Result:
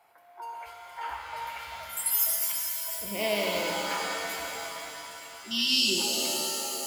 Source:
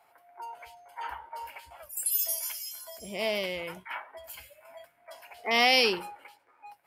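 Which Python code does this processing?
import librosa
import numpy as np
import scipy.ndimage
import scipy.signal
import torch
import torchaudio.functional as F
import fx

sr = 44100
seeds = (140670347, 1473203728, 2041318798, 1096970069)

y = fx.spec_erase(x, sr, start_s=4.98, length_s=1.01, low_hz=400.0, high_hz=2600.0)
y = fx.rev_shimmer(y, sr, seeds[0], rt60_s=3.2, semitones=7, shimmer_db=-2, drr_db=0.5)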